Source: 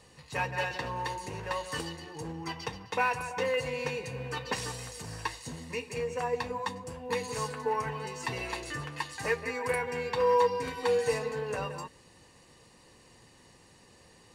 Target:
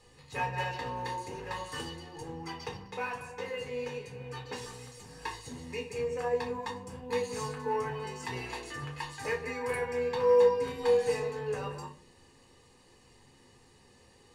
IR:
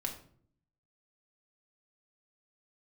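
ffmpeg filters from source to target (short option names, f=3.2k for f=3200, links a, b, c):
-filter_complex "[0:a]asplit=3[a][b][c];[a]afade=t=out:st=2.86:d=0.02[d];[b]flanger=delay=5.1:depth=7.2:regen=81:speed=1.2:shape=sinusoidal,afade=t=in:st=2.86:d=0.02,afade=t=out:st=5.21:d=0.02[e];[c]afade=t=in:st=5.21:d=0.02[f];[d][e][f]amix=inputs=3:normalize=0[g];[1:a]atrim=start_sample=2205,asetrate=70560,aresample=44100[h];[g][h]afir=irnorm=-1:irlink=0"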